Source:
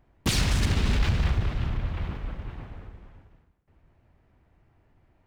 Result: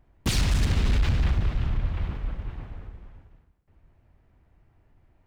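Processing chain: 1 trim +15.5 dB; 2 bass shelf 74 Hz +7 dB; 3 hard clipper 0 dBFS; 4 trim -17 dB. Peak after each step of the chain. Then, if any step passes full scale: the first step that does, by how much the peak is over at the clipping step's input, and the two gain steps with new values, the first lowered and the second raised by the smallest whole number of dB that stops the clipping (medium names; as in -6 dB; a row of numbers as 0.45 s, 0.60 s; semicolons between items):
+3.5 dBFS, +7.0 dBFS, 0.0 dBFS, -17.0 dBFS; step 1, 7.0 dB; step 1 +8.5 dB, step 4 -10 dB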